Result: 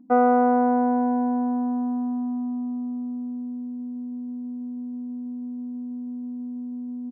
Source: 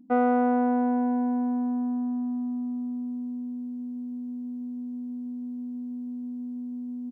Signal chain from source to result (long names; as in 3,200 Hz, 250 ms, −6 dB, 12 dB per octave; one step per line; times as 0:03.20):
drawn EQ curve 150 Hz 0 dB, 650 Hz +6 dB, 1,200 Hz +6 dB, 3,100 Hz −7 dB